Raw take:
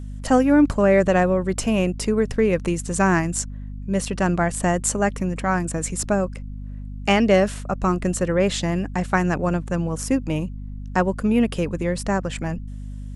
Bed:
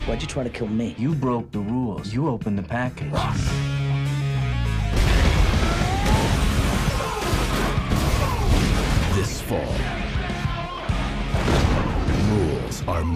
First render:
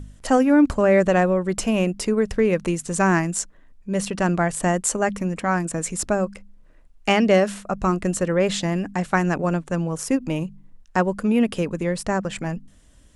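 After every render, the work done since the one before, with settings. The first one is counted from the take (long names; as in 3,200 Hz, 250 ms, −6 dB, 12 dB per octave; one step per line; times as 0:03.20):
hum removal 50 Hz, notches 5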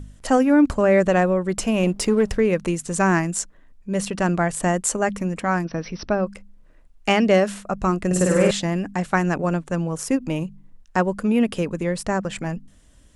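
0:01.83–0:02.38: leveller curve on the samples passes 1
0:05.64–0:06.27: linear-phase brick-wall low-pass 6,000 Hz
0:08.06–0:08.51: flutter between parallel walls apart 8.5 metres, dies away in 1.4 s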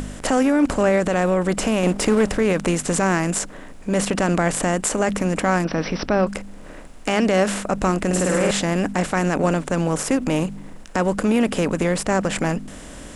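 compressor on every frequency bin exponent 0.6
brickwall limiter −9.5 dBFS, peak gain reduction 8 dB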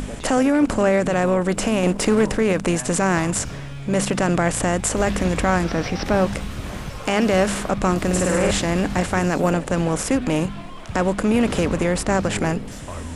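mix in bed −10 dB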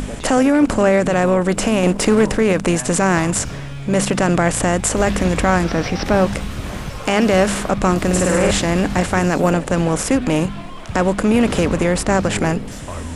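level +3.5 dB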